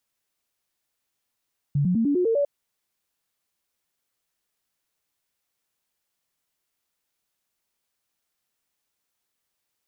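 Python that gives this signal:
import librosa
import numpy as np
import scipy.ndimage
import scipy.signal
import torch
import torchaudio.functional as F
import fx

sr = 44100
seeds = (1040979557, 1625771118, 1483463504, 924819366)

y = fx.stepped_sweep(sr, from_hz=143.0, direction='up', per_octave=3, tones=7, dwell_s=0.1, gap_s=0.0, level_db=-18.5)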